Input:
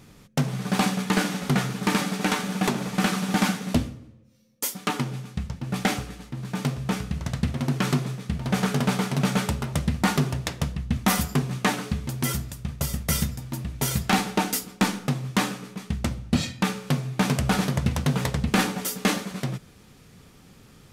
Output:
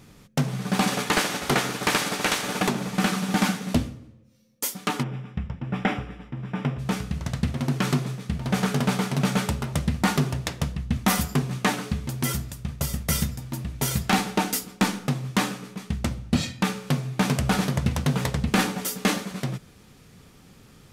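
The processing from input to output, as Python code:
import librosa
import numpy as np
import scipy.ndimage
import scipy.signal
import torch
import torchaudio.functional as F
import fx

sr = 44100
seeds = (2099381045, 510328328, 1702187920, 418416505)

y = fx.spec_clip(x, sr, under_db=16, at=(0.87, 2.62), fade=0.02)
y = fx.savgol(y, sr, points=25, at=(5.02, 6.78), fade=0.02)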